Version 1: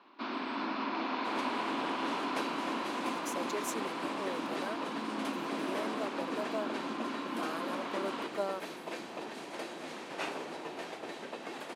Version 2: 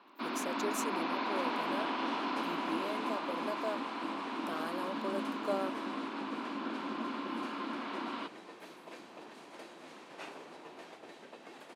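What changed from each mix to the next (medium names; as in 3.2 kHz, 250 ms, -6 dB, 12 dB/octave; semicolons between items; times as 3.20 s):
speech: entry -2.90 s; second sound -9.0 dB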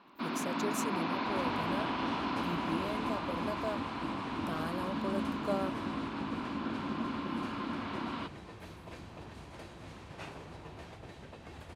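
master: remove high-pass 250 Hz 24 dB/octave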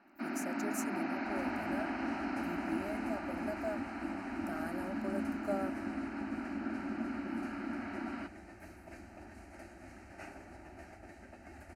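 master: add static phaser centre 700 Hz, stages 8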